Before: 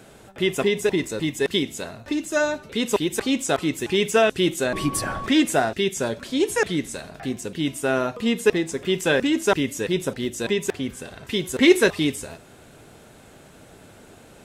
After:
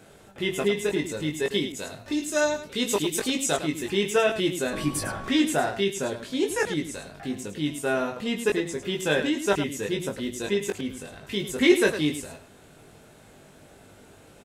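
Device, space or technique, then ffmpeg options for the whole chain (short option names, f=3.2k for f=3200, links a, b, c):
slapback doubling: -filter_complex "[0:a]asplit=3[a][b][c];[b]adelay=20,volume=-3.5dB[d];[c]adelay=105,volume=-9.5dB[e];[a][d][e]amix=inputs=3:normalize=0,asettb=1/sr,asplit=3[f][g][h];[f]atrim=end=1.724[i];[g]atrim=start=1.72:end=3.57,asetpts=PTS-STARTPTS,afade=t=in:d=0.004:c=qsin,afade=t=out:st=1.846:d=0.004:c=qsin,adynamicequalizer=threshold=0.0112:dfrequency=3000:dqfactor=0.7:tfrequency=3000:tqfactor=0.7:attack=5:release=100:ratio=0.375:range=3:mode=boostabove:tftype=highshelf[j];[h]atrim=start=3.566[k];[i][j]acrossfade=d=0.004:c1=hsin:c2=qsin[l];[l][k]acrossfade=d=0.004:c1=qsin:c2=hsin,volume=-5.5dB"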